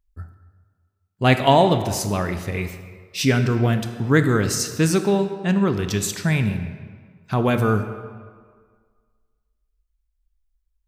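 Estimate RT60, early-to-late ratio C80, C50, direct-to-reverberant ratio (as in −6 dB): 1.8 s, 10.5 dB, 9.0 dB, 8.0 dB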